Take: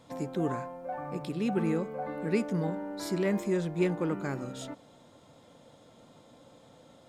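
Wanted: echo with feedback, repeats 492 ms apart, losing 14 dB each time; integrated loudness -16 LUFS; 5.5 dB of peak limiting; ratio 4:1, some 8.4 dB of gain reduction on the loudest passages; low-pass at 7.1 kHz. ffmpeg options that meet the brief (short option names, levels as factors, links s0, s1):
-af "lowpass=7100,acompressor=threshold=0.0224:ratio=4,alimiter=level_in=2:limit=0.0631:level=0:latency=1,volume=0.501,aecho=1:1:492|984:0.2|0.0399,volume=15"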